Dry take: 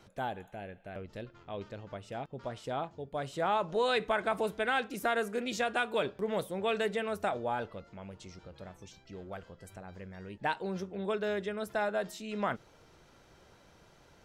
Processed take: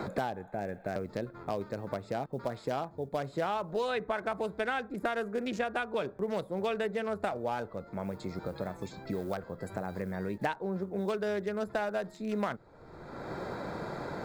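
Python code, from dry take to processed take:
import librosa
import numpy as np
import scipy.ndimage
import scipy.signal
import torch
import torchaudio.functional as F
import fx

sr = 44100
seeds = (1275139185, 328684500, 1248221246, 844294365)

y = fx.wiener(x, sr, points=15)
y = fx.quant_float(y, sr, bits=6)
y = fx.high_shelf(y, sr, hz=11000.0, db=6.0, at=(8.04, 10.19))
y = fx.band_squash(y, sr, depth_pct=100)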